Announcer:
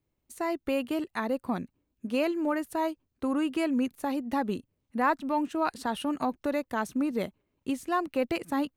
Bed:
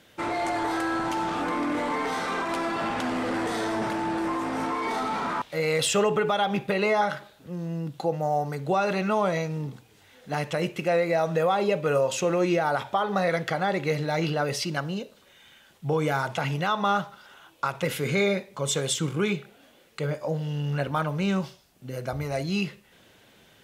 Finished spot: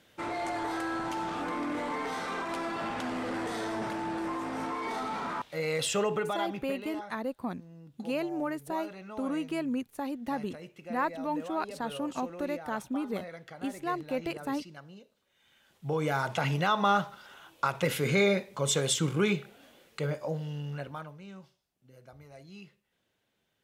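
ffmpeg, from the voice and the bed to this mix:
ffmpeg -i stem1.wav -i stem2.wav -filter_complex "[0:a]adelay=5950,volume=-4.5dB[link_01];[1:a]volume=12dB,afade=type=out:start_time=6.14:duration=0.66:silence=0.223872,afade=type=in:start_time=15.29:duration=1.2:silence=0.125893,afade=type=out:start_time=19.72:duration=1.47:silence=0.0944061[link_02];[link_01][link_02]amix=inputs=2:normalize=0" out.wav

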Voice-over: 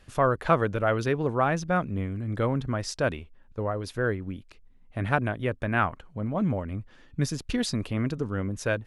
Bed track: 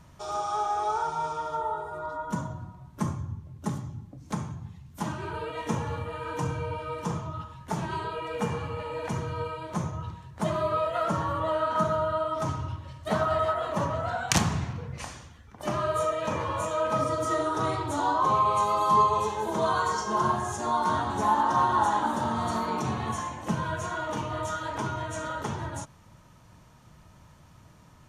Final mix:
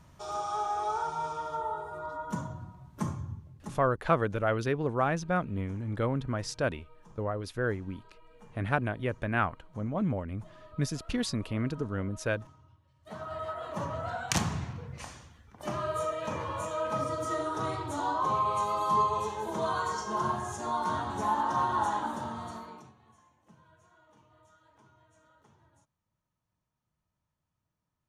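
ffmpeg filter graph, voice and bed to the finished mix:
ffmpeg -i stem1.wav -i stem2.wav -filter_complex "[0:a]adelay=3600,volume=-3.5dB[link_01];[1:a]volume=17.5dB,afade=type=out:start_time=3.31:duration=0.59:silence=0.0749894,afade=type=in:start_time=12.92:duration=1.12:silence=0.0891251,afade=type=out:start_time=21.9:duration=1.03:silence=0.0530884[link_02];[link_01][link_02]amix=inputs=2:normalize=0" out.wav

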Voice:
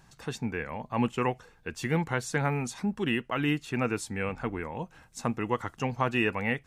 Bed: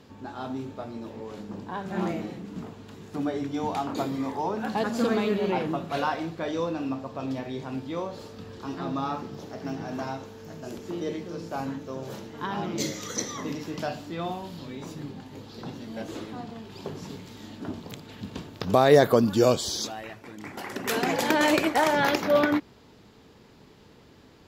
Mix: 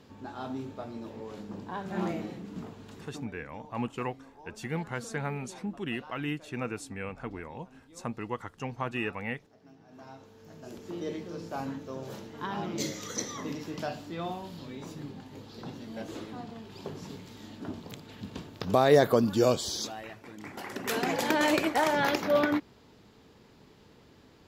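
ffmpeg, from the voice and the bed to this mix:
ffmpeg -i stem1.wav -i stem2.wav -filter_complex "[0:a]adelay=2800,volume=-6dB[link_01];[1:a]volume=16dB,afade=type=out:start_time=3:duration=0.27:silence=0.105925,afade=type=in:start_time=9.86:duration=1.3:silence=0.112202[link_02];[link_01][link_02]amix=inputs=2:normalize=0" out.wav

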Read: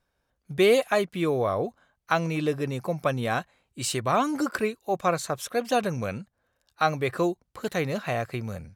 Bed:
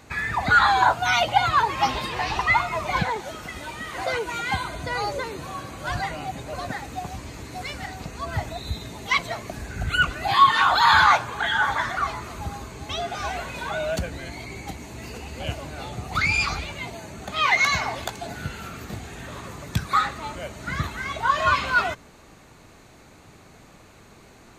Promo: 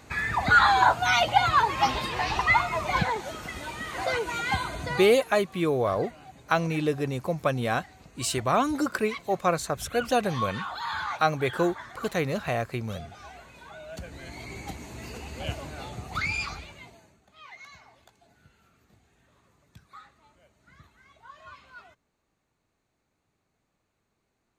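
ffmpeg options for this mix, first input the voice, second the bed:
ffmpeg -i stem1.wav -i stem2.wav -filter_complex "[0:a]adelay=4400,volume=0dB[link_01];[1:a]volume=12dB,afade=type=out:start_time=4.82:duration=0.35:silence=0.177828,afade=type=in:start_time=13.88:duration=0.65:silence=0.211349,afade=type=out:start_time=15.63:duration=1.58:silence=0.0595662[link_02];[link_01][link_02]amix=inputs=2:normalize=0" out.wav

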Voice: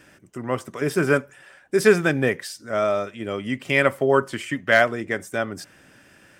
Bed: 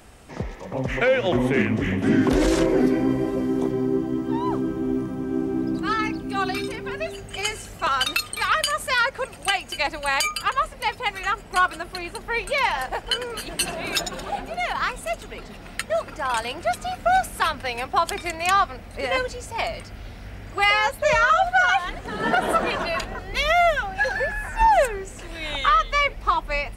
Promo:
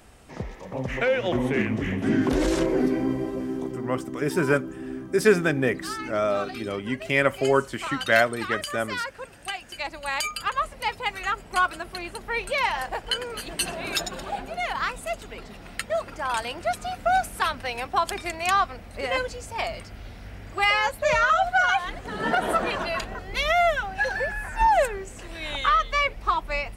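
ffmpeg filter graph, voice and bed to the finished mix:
ffmpeg -i stem1.wav -i stem2.wav -filter_complex "[0:a]adelay=3400,volume=-2.5dB[link_01];[1:a]volume=4dB,afade=type=out:start_time=3.01:duration=0.93:silence=0.473151,afade=type=in:start_time=9.57:duration=1.17:silence=0.421697[link_02];[link_01][link_02]amix=inputs=2:normalize=0" out.wav

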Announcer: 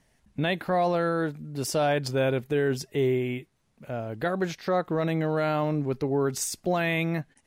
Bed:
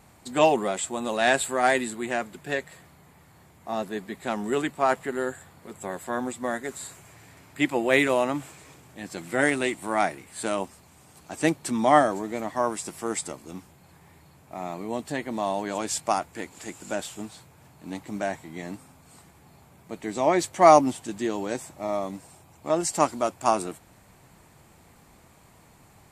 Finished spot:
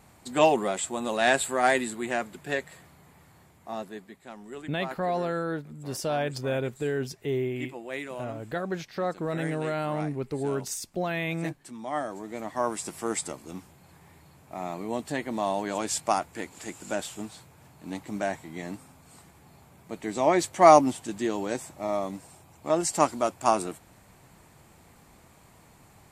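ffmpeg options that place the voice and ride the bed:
ffmpeg -i stem1.wav -i stem2.wav -filter_complex "[0:a]adelay=4300,volume=-4dB[link_01];[1:a]volume=13.5dB,afade=type=out:start_time=3.26:duration=0.98:silence=0.199526,afade=type=in:start_time=11.91:duration=0.95:silence=0.188365[link_02];[link_01][link_02]amix=inputs=2:normalize=0" out.wav

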